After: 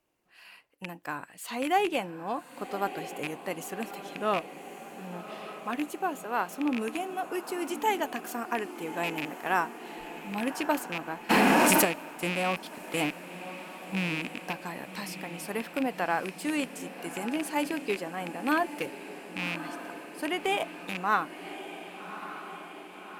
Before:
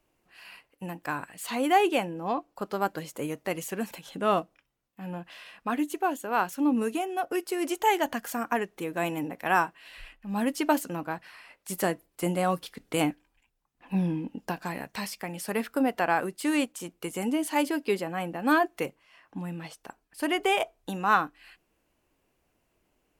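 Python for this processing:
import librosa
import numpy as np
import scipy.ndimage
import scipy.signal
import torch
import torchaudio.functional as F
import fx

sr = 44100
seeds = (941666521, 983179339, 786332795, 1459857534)

p1 = fx.rattle_buzz(x, sr, strikes_db=-34.0, level_db=-18.0)
p2 = fx.cheby_harmonics(p1, sr, harmonics=(2,), levels_db=(-21,), full_scale_db=-9.0)
p3 = fx.low_shelf(p2, sr, hz=96.0, db=-9.5)
p4 = p3 + fx.echo_diffused(p3, sr, ms=1168, feedback_pct=65, wet_db=-11.5, dry=0)
p5 = fx.env_flatten(p4, sr, amount_pct=100, at=(11.29, 11.84), fade=0.02)
y = p5 * 10.0 ** (-3.5 / 20.0)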